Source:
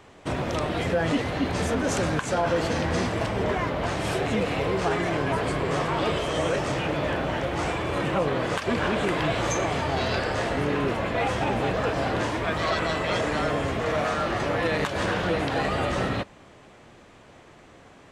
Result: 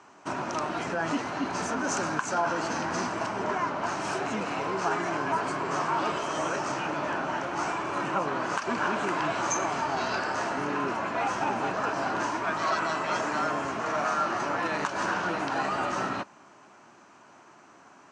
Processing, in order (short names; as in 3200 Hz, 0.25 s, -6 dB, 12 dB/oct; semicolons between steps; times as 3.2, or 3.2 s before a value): speaker cabinet 230–8300 Hz, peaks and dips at 490 Hz -10 dB, 960 Hz +6 dB, 1400 Hz +6 dB, 2000 Hz -5 dB, 3500 Hz -9 dB, 6100 Hz +6 dB; gain -2.5 dB